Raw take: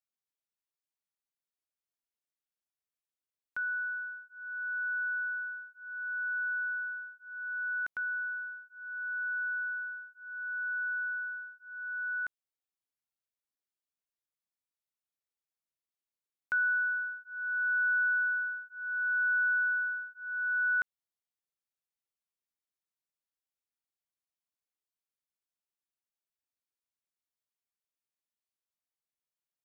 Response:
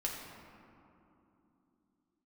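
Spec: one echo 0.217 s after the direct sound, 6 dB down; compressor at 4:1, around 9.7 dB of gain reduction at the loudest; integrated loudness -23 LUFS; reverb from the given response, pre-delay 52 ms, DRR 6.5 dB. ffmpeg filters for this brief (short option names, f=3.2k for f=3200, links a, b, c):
-filter_complex "[0:a]acompressor=threshold=-39dB:ratio=4,aecho=1:1:217:0.501,asplit=2[a][b];[1:a]atrim=start_sample=2205,adelay=52[c];[b][c]afir=irnorm=-1:irlink=0,volume=-9dB[d];[a][d]amix=inputs=2:normalize=0,volume=15dB"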